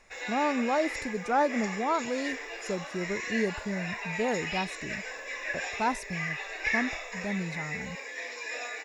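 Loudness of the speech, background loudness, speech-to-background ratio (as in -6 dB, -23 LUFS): -32.0 LUFS, -34.5 LUFS, 2.5 dB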